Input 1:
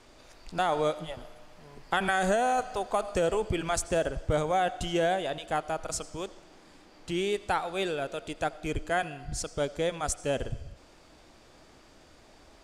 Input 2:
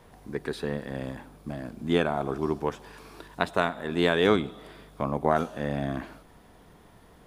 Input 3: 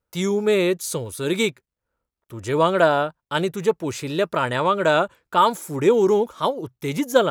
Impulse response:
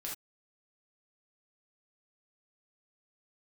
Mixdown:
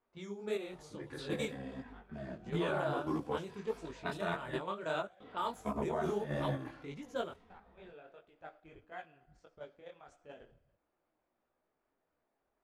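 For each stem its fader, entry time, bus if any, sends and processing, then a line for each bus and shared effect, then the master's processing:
-9.0 dB, 0.00 s, send -14.5 dB, bass shelf 170 Hz -12 dB; flange 0.5 Hz, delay 4.3 ms, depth 1.6 ms, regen -77%; auto duck -23 dB, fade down 1.15 s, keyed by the third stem
+2.0 dB, 0.65 s, muted 4.59–5.20 s, no send, endless flanger 2.9 ms -0.54 Hz
-13.0 dB, 0.00 s, send -21 dB, none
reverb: on, pre-delay 3 ms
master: level-controlled noise filter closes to 1.6 kHz, open at -27 dBFS; level held to a coarse grid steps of 10 dB; detune thickener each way 54 cents

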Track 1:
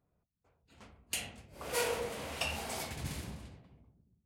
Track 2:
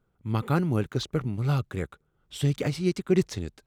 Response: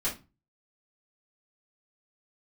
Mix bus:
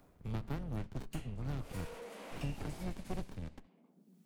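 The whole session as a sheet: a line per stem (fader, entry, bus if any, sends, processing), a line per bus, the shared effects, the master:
-4.5 dB, 0.00 s, no send, steep high-pass 170 Hz 96 dB/octave; overload inside the chain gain 33.5 dB; auto duck -10 dB, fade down 0.20 s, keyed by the second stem
-11.0 dB, 0.00 s, send -23 dB, octave divider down 2 oct, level 0 dB; bass shelf 320 Hz -7.5 dB; sliding maximum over 65 samples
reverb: on, RT60 0.30 s, pre-delay 3 ms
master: three bands compressed up and down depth 70%

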